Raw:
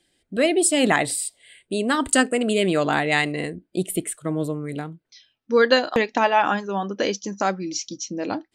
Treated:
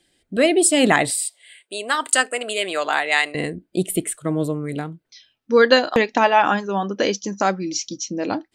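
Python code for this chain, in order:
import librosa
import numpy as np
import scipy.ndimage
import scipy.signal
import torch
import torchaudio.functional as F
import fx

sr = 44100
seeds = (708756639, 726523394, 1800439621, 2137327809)

y = fx.highpass(x, sr, hz=690.0, slope=12, at=(1.1, 3.35))
y = y * 10.0 ** (3.0 / 20.0)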